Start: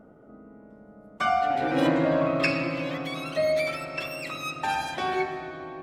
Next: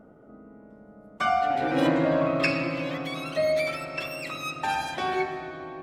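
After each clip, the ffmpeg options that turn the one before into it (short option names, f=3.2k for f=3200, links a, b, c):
-af anull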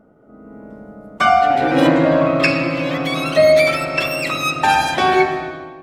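-af "dynaudnorm=f=140:g=7:m=14.5dB"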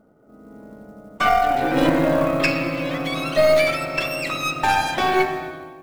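-af "aeval=exprs='0.891*(cos(1*acos(clip(val(0)/0.891,-1,1)))-cos(1*PI/2))+0.251*(cos(2*acos(clip(val(0)/0.891,-1,1)))-cos(2*PI/2))':c=same,acrusher=bits=7:mode=log:mix=0:aa=0.000001,volume=-4.5dB"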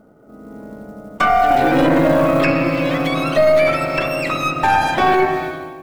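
-filter_complex "[0:a]acrossover=split=2200[a][b];[b]acompressor=threshold=-37dB:ratio=6[c];[a][c]amix=inputs=2:normalize=0,alimiter=limit=-12dB:level=0:latency=1:release=14,volume=7dB"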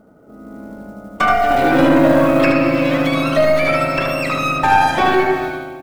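-af "aecho=1:1:76:0.596"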